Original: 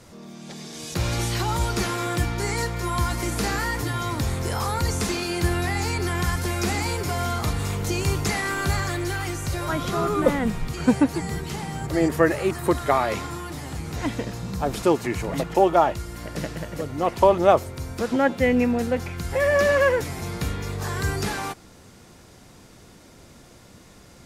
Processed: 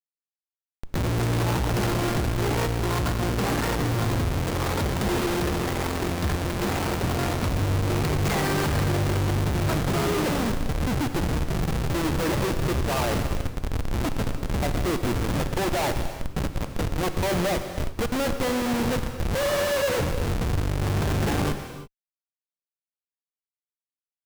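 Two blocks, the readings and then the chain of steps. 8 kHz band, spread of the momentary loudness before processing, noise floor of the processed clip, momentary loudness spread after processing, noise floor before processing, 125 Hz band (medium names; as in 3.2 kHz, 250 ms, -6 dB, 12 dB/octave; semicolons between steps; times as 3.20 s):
-2.5 dB, 12 LU, under -85 dBFS, 5 LU, -49 dBFS, +2.0 dB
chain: Schmitt trigger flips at -25 dBFS; gated-style reverb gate 360 ms flat, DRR 7.5 dB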